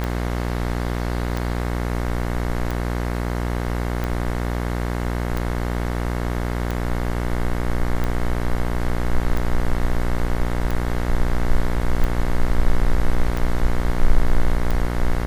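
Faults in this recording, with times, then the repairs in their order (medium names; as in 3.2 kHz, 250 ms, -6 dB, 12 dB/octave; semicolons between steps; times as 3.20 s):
buzz 60 Hz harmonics 37 -24 dBFS
tick 45 rpm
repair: de-click; de-hum 60 Hz, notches 37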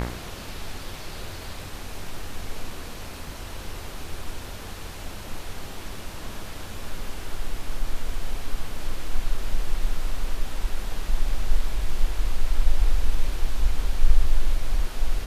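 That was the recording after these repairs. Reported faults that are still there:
nothing left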